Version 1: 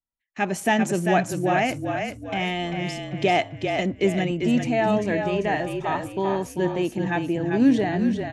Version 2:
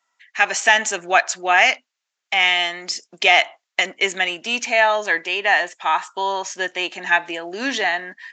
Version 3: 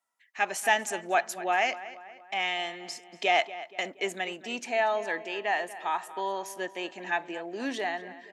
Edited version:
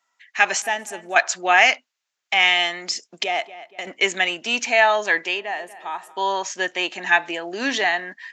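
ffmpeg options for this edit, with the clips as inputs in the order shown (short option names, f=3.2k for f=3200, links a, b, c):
-filter_complex "[2:a]asplit=3[a][b][c];[1:a]asplit=4[d][e][f][g];[d]atrim=end=0.622[h];[a]atrim=start=0.618:end=1.162[i];[e]atrim=start=1.158:end=3.242[j];[b]atrim=start=3.238:end=3.872[k];[f]atrim=start=3.868:end=5.46[l];[c]atrim=start=5.3:end=6.23[m];[g]atrim=start=6.07[n];[h][i]acrossfade=d=0.004:c1=hsin:c2=hsin[o];[o][j]acrossfade=d=0.004:c1=hsin:c2=hsin[p];[p][k]acrossfade=d=0.004:c1=hsin:c2=hsin[q];[q][l]acrossfade=d=0.004:c1=hsin:c2=hsin[r];[r][m]acrossfade=d=0.16:c1=tri:c2=tri[s];[s][n]acrossfade=d=0.16:c1=tri:c2=tri"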